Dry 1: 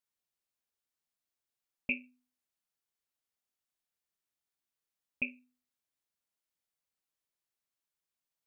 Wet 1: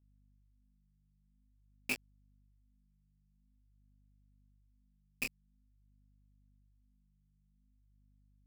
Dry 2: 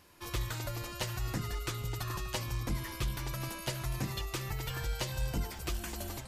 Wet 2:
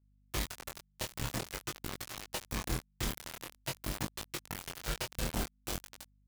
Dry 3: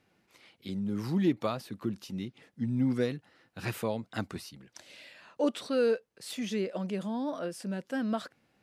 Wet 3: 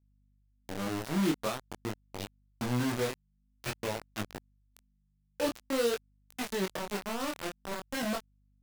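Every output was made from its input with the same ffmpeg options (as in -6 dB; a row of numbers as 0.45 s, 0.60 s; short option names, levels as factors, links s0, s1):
-af "acrusher=bits=4:mix=0:aa=0.000001,aeval=exprs='val(0)+0.000447*(sin(2*PI*50*n/s)+sin(2*PI*2*50*n/s)/2+sin(2*PI*3*50*n/s)/3+sin(2*PI*4*50*n/s)/4+sin(2*PI*5*50*n/s)/5)':c=same,flanger=delay=19:depth=7.4:speed=0.48"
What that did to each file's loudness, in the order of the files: -2.5 LU, -2.5 LU, -1.5 LU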